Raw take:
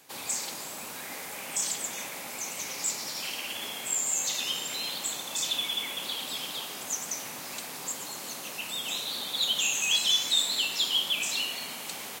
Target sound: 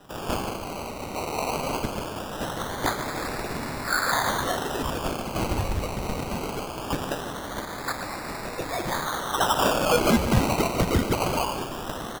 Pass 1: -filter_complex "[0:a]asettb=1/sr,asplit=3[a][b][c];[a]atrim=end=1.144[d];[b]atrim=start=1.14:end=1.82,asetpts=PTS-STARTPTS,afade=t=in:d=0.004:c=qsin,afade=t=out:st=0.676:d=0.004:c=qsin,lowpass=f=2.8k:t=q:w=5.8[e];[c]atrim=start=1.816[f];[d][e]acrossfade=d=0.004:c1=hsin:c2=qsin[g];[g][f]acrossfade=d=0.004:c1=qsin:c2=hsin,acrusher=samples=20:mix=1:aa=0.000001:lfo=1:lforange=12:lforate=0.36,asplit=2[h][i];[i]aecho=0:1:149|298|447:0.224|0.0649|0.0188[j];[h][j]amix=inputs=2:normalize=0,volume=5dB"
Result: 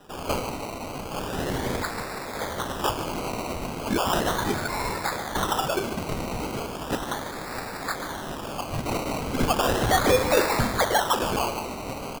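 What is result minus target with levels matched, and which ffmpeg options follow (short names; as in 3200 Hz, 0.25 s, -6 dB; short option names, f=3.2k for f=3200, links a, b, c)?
decimation with a swept rate: distortion -6 dB
-filter_complex "[0:a]asettb=1/sr,asplit=3[a][b][c];[a]atrim=end=1.144[d];[b]atrim=start=1.14:end=1.82,asetpts=PTS-STARTPTS,afade=t=in:d=0.004:c=qsin,afade=t=out:st=0.676:d=0.004:c=qsin,lowpass=f=2.8k:t=q:w=5.8[e];[c]atrim=start=1.816[f];[d][e]acrossfade=d=0.004:c1=hsin:c2=qsin[g];[g][f]acrossfade=d=0.004:c1=qsin:c2=hsin,acrusher=samples=20:mix=1:aa=0.000001:lfo=1:lforange=12:lforate=0.21,asplit=2[h][i];[i]aecho=0:1:149|298|447:0.224|0.0649|0.0188[j];[h][j]amix=inputs=2:normalize=0,volume=5dB"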